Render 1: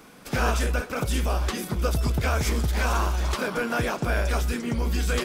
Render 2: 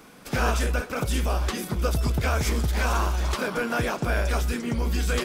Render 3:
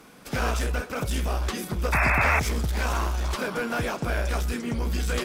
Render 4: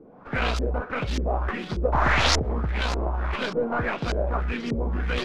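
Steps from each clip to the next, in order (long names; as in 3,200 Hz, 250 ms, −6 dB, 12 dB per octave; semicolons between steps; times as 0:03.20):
no processing that can be heard
asymmetric clip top −22.5 dBFS; sound drawn into the spectrogram noise, 0:01.92–0:02.40, 560–2,700 Hz −22 dBFS; level −1 dB
stylus tracing distortion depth 0.48 ms; auto-filter low-pass saw up 1.7 Hz 380–5,600 Hz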